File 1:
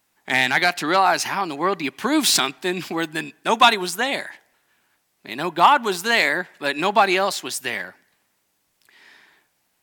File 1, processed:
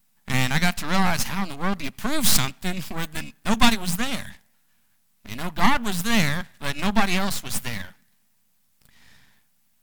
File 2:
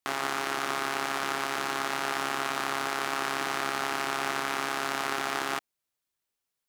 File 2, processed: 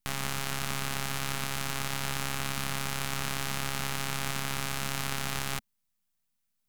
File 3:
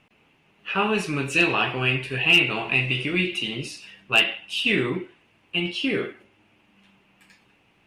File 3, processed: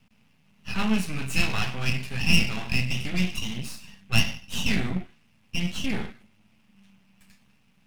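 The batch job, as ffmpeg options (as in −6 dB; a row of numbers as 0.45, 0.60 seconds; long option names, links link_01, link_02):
-af "crystalizer=i=1.5:c=0,aeval=exprs='max(val(0),0)':channel_layout=same,lowshelf=frequency=270:width_type=q:width=3:gain=7,volume=-3dB"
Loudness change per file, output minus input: −4.5, −2.5, −5.0 LU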